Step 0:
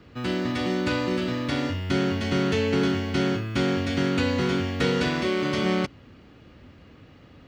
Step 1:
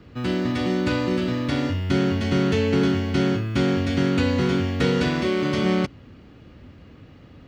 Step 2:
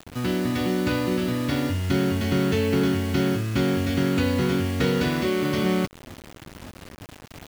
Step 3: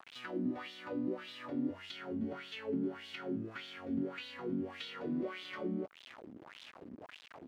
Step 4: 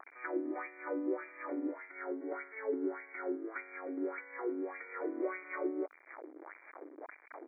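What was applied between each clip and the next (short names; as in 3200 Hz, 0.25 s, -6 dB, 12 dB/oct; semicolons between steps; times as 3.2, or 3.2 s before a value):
low shelf 370 Hz +5 dB
in parallel at 0 dB: compressor 6:1, threshold -30 dBFS, peak gain reduction 13 dB; on the sum: requantised 6-bit, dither none; gain -3.5 dB
compressor 10:1, threshold -28 dBFS, peak gain reduction 11 dB; wah 1.7 Hz 230–3600 Hz, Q 3.6; gain +2 dB
brick-wall FIR band-pass 280–2400 Hz; gain +4.5 dB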